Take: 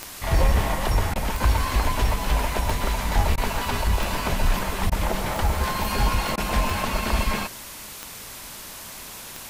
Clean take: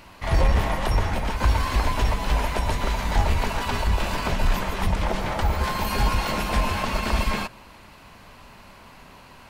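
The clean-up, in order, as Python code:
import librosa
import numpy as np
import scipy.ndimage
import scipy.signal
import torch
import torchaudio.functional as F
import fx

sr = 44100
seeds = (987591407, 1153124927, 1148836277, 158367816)

y = fx.fix_declick_ar(x, sr, threshold=10.0)
y = fx.fix_interpolate(y, sr, at_s=(1.14, 3.36, 4.9, 6.36), length_ms=15.0)
y = fx.noise_reduce(y, sr, print_start_s=7.93, print_end_s=8.43, reduce_db=8.0)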